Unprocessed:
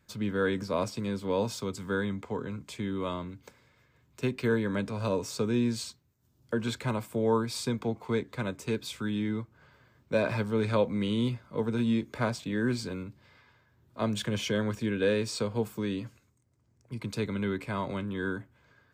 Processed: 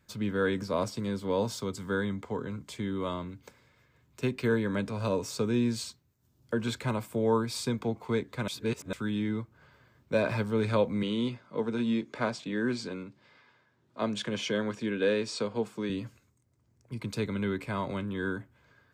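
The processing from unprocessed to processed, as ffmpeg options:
-filter_complex "[0:a]asettb=1/sr,asplit=3[s0][s1][s2];[s0]atrim=end=0.704[s3];[s1]atrim=start=0.7:end=3.17,asetpts=PTS-STARTPTS,afade=t=in:d=0.004:c=qsin,afade=t=out:st=2.466:d=0.004:c=qsin,bandreject=f=2500:w=12[s4];[s2]atrim=start=3.166[s5];[s3][s4]acrossfade=d=0.004:c1=hsin:c2=qsin[s6];[s6][s5]acrossfade=d=0.004:c1=qsin:c2=hsin,asettb=1/sr,asplit=3[s7][s8][s9];[s7]atrim=end=11.034[s10];[s8]atrim=start=11.03:end=15.9,asetpts=PTS-STARTPTS,afade=t=in:d=0.004:c=qsin,afade=t=out:st=4.866:d=0.004:c=qsin,highpass=180,lowpass=7100[s11];[s9]atrim=start=15.896[s12];[s10][s11]acrossfade=d=0.004:c1=hsin:c2=qsin[s13];[s13][s12]acrossfade=d=0.004:c1=qsin:c2=hsin,asplit=3[s14][s15][s16];[s14]atrim=end=8.482[s17];[s15]atrim=start=8.478:end=8.932,asetpts=PTS-STARTPTS,areverse[s18];[s16]atrim=start=8.928[s19];[s17][s18]acrossfade=d=0.004:c1=hsin:c2=hsin[s20];[s20][s19]acrossfade=d=0.004:c1=hsin:c2=hsin"

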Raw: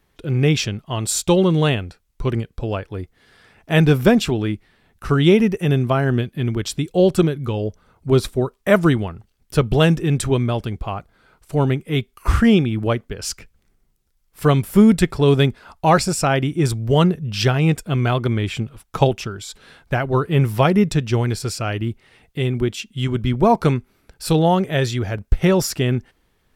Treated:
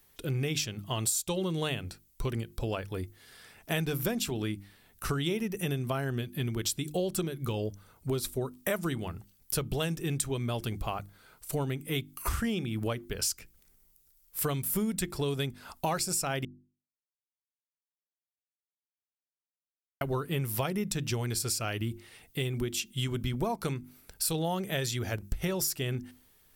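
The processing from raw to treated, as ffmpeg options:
-filter_complex "[0:a]asplit=3[s0][s1][s2];[s0]atrim=end=16.45,asetpts=PTS-STARTPTS,afade=t=out:st=16.446:d=0.004:c=hsin[s3];[s1]atrim=start=16.45:end=20.01,asetpts=PTS-STARTPTS,volume=0[s4];[s2]atrim=start=20.01,asetpts=PTS-STARTPTS,afade=t=in:d=0.004:c=hsin[s5];[s3][s4][s5]concat=n=3:v=0:a=1,aemphasis=mode=production:type=75fm,bandreject=f=50:t=h:w=6,bandreject=f=100:t=h:w=6,bandreject=f=150:t=h:w=6,bandreject=f=200:t=h:w=6,bandreject=f=250:t=h:w=6,bandreject=f=300:t=h:w=6,bandreject=f=350:t=h:w=6,acompressor=threshold=0.0631:ratio=6,volume=0.596"

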